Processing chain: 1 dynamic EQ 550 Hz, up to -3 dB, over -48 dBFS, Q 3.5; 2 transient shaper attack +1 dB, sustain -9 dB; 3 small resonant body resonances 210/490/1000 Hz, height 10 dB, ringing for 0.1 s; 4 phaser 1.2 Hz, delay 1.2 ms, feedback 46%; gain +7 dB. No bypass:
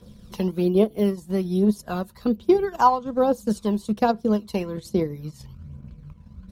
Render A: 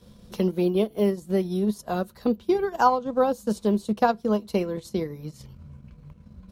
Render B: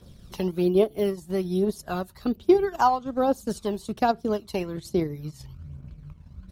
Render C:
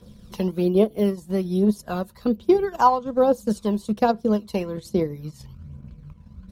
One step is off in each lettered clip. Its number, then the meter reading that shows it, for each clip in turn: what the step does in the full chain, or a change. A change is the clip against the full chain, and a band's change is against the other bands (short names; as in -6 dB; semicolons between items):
4, 2 kHz band +3.0 dB; 3, 250 Hz band -3.0 dB; 1, momentary loudness spread change -1 LU